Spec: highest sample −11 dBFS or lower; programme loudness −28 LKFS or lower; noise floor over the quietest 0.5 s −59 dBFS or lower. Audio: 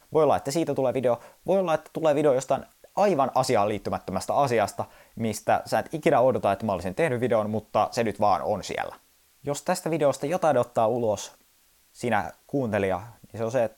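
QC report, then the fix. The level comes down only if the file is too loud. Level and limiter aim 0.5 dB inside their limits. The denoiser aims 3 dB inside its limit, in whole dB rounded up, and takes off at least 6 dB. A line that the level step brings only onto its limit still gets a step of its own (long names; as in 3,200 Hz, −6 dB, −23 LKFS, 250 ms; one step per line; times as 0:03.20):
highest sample −7.0 dBFS: out of spec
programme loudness −25.5 LKFS: out of spec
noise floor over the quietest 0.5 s −62 dBFS: in spec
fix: level −3 dB
brickwall limiter −11.5 dBFS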